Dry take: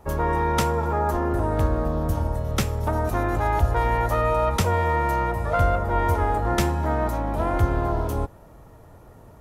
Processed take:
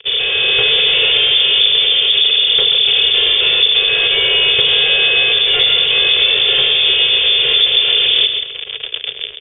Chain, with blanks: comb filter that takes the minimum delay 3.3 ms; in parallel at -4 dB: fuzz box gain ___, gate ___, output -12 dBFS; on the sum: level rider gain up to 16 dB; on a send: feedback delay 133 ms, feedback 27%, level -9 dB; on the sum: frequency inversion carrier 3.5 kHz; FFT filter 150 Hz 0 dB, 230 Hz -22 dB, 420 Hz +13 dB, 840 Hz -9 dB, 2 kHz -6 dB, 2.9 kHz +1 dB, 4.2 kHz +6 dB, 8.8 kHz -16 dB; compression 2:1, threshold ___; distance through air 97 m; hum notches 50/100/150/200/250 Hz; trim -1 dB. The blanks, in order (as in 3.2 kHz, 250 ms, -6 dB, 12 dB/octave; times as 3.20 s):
44 dB, -44 dBFS, -9 dBFS